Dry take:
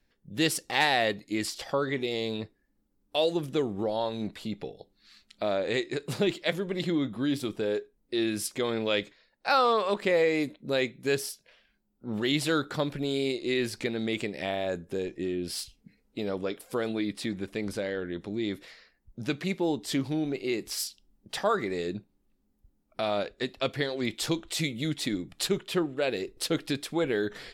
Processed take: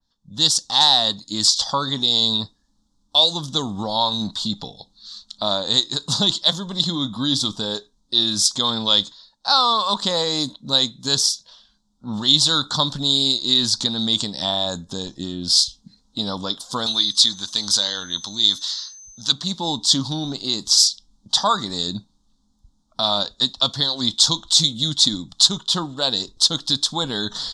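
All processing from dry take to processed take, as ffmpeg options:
-filter_complex "[0:a]asettb=1/sr,asplit=3[s0][s1][s2];[s0]atrim=end=16.864[s3];[s1]atrim=start=16.86:end=19.32,asetpts=PTS-STARTPTS,afade=t=in:d=0.004:c=qsin,afade=t=out:st=2.456:d=0.004:c=qsin,tiltshelf=f=890:g=-8.5,aeval=exprs='val(0)+0.001*sin(2*PI*6200*n/s)':c=same[s4];[s2]atrim=start=19.316[s5];[s3][s4]acrossfade=d=0.004:c1=hsin:c2=qsin[s6];[s6][s5]acrossfade=d=0.004:c1=qsin:c2=hsin,firequalizer=gain_entry='entry(250,0);entry(370,-14);entry(970,8);entry(2300,-23);entry(3500,11);entry(6600,10);entry(14000,-22)':delay=0.05:min_phase=1,dynaudnorm=f=150:g=3:m=3.55,adynamicequalizer=threshold=0.0316:dfrequency=2400:dqfactor=0.7:tfrequency=2400:tqfactor=0.7:attack=5:release=100:ratio=0.375:range=2:mode=boostabove:tftype=highshelf,volume=0.708"

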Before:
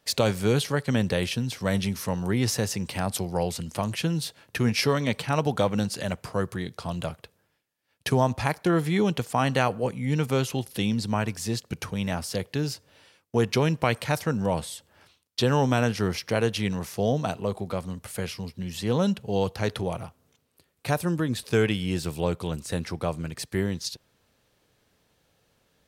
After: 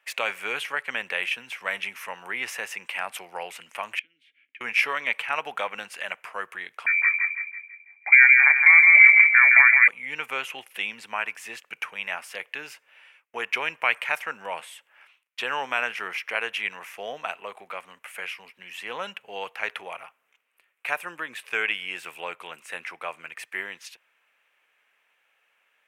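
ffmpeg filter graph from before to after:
-filter_complex "[0:a]asettb=1/sr,asplit=3[s0][s1][s2];[s0]atrim=end=3.994[s3];[s1]atrim=start=3.99:end=4.61,asetpts=PTS-STARTPTS,afade=t=in:d=0.004:c=qsin,afade=t=out:st=0.616:d=0.004:c=qsin,acompressor=threshold=0.02:ratio=8:attack=3.2:release=140:knee=1:detection=peak,asplit=3[s4][s5][s6];[s4]bandpass=f=270:t=q:w=8,volume=1[s7];[s5]bandpass=f=2290:t=q:w=8,volume=0.501[s8];[s6]bandpass=f=3010:t=q:w=8,volume=0.355[s9];[s7][s8][s9]amix=inputs=3:normalize=0[s10];[s2]atrim=start=4.606[s11];[s3][s10]acrossfade=d=0.004:c1=hsin:c2=qsin[s12];[s12][s11]acrossfade=d=0.004:c1=qsin:c2=hsin,asettb=1/sr,asplit=3[s13][s14][s15];[s13]atrim=end=6.864[s16];[s14]atrim=start=6.86:end=9.88,asetpts=PTS-STARTPTS,afade=t=in:d=0.004:c=qsin,afade=t=out:st=3.016:d=0.004:c=qsin,asplit=2[s17][s18];[s18]adelay=19,volume=0.224[s19];[s17][s19]amix=inputs=2:normalize=0,atrim=end_sample=133182,asplit=2[s20][s21];[s21]adelay=165,lowpass=f=1100:p=1,volume=0.708,asplit=2[s22][s23];[s23]adelay=165,lowpass=f=1100:p=1,volume=0.48,asplit=2[s24][s25];[s25]adelay=165,lowpass=f=1100:p=1,volume=0.48,asplit=2[s26][s27];[s27]adelay=165,lowpass=f=1100:p=1,volume=0.48,asplit=2[s28][s29];[s29]adelay=165,lowpass=f=1100:p=1,volume=0.48,asplit=2[s30][s31];[s31]adelay=165,lowpass=f=1100:p=1,volume=0.48[s32];[s20][s22][s24][s26][s28][s30][s32]amix=inputs=7:normalize=0,atrim=end_sample=133182,lowpass=f=2100:t=q:w=0.5098,lowpass=f=2100:t=q:w=0.6013,lowpass=f=2100:t=q:w=0.9,lowpass=f=2100:t=q:w=2.563,afreqshift=-2500[s33];[s15]atrim=start=9.876[s34];[s16][s33]acrossfade=d=0.004:c1=hsin:c2=qsin[s35];[s35][s34]acrossfade=d=0.004:c1=qsin:c2=hsin,highpass=1100,highshelf=f=3300:t=q:w=3:g=-10,volume=1.41"

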